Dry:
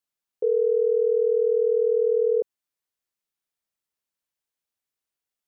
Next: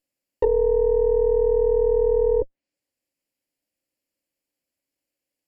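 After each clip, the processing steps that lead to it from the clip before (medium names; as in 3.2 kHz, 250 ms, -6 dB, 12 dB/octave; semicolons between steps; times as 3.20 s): comb filter that takes the minimum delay 0.41 ms; low-pass that closes with the level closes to 430 Hz, closed at -21 dBFS; small resonant body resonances 290/540 Hz, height 12 dB, ringing for 45 ms; trim +4 dB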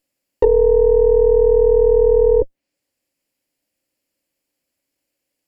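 dynamic bell 1.3 kHz, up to -4 dB, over -37 dBFS, Q 0.71; trim +7.5 dB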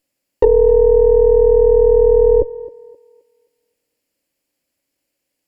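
thinning echo 263 ms, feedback 33%, high-pass 240 Hz, level -16.5 dB; trim +2 dB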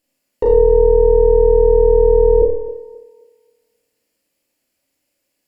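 peak limiter -8.5 dBFS, peak gain reduction 7 dB; Schroeder reverb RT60 0.57 s, combs from 26 ms, DRR -1.5 dB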